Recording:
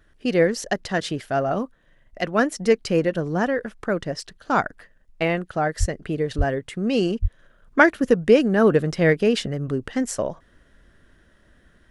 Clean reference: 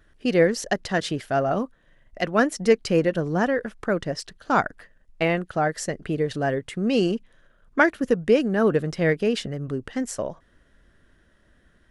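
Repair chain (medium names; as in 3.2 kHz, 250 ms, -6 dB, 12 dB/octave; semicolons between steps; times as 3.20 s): 5.79–5.91 s: high-pass 140 Hz 24 dB/octave; 6.37–6.49 s: high-pass 140 Hz 24 dB/octave; 7.21–7.33 s: high-pass 140 Hz 24 dB/octave; trim 0 dB, from 7.39 s -3.5 dB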